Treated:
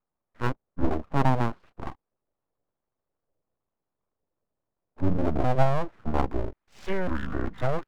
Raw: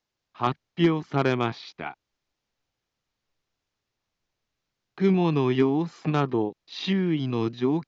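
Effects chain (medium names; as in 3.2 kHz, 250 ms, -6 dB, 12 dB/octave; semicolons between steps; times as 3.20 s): pitch shift switched off and on -12 st, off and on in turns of 544 ms; low-pass sweep 570 Hz -> 1.4 kHz, 5.67–6.91 s; full-wave rectifier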